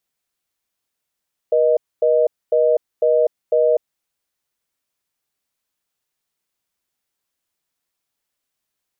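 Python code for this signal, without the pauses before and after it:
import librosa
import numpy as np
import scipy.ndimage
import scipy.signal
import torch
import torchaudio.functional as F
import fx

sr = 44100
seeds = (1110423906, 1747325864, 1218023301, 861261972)

y = fx.call_progress(sr, length_s=2.39, kind='reorder tone', level_db=-15.0)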